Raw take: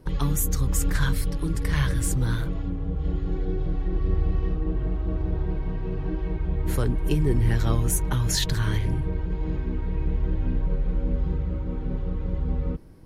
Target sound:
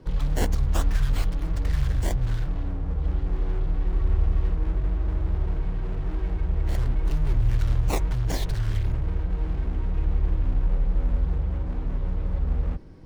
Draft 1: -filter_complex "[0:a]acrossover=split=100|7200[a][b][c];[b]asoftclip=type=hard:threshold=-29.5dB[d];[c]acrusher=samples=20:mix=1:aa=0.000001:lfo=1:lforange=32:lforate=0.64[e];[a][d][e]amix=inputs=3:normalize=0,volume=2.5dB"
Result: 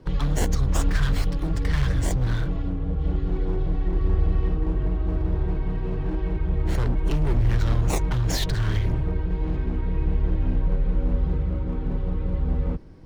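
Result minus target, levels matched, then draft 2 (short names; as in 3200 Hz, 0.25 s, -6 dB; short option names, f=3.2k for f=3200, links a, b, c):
hard clip: distortion -5 dB
-filter_complex "[0:a]acrossover=split=100|7200[a][b][c];[b]asoftclip=type=hard:threshold=-40dB[d];[c]acrusher=samples=20:mix=1:aa=0.000001:lfo=1:lforange=32:lforate=0.64[e];[a][d][e]amix=inputs=3:normalize=0,volume=2.5dB"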